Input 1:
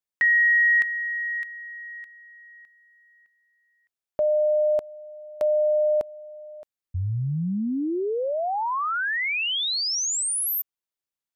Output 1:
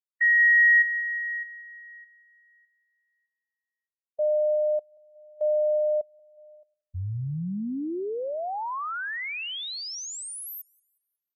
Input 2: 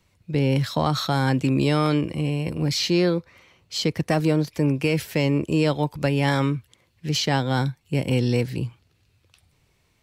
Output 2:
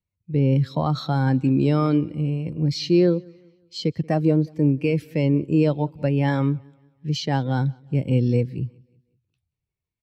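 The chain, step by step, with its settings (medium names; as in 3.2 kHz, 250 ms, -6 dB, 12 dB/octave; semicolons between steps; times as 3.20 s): feedback delay 182 ms, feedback 54%, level -19 dB; spectral contrast expander 1.5:1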